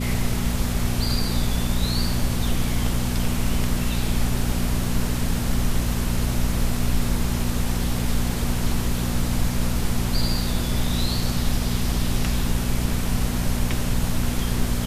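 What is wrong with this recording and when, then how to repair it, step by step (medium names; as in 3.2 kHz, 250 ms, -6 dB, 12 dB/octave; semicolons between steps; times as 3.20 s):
hum 60 Hz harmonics 4 -26 dBFS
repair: de-hum 60 Hz, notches 4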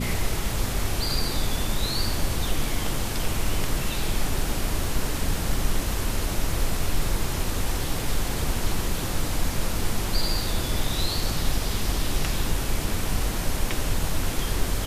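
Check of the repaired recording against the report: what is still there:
nothing left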